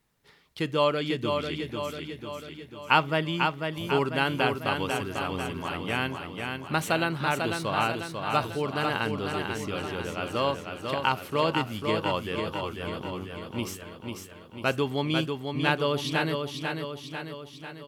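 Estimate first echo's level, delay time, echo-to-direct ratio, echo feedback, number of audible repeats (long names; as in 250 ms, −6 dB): −5.0 dB, 495 ms, −3.5 dB, 57%, 7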